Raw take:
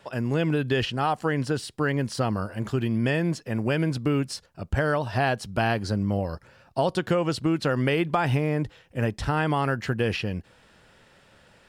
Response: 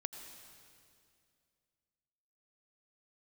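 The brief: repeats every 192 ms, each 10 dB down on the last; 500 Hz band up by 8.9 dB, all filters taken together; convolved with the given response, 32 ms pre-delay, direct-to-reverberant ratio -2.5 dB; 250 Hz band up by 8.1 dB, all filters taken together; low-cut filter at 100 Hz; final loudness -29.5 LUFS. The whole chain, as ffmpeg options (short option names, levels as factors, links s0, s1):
-filter_complex "[0:a]highpass=100,equalizer=f=250:t=o:g=8,equalizer=f=500:t=o:g=8.5,aecho=1:1:192|384|576|768:0.316|0.101|0.0324|0.0104,asplit=2[s0][s1];[1:a]atrim=start_sample=2205,adelay=32[s2];[s1][s2]afir=irnorm=-1:irlink=0,volume=1.58[s3];[s0][s3]amix=inputs=2:normalize=0,volume=0.188"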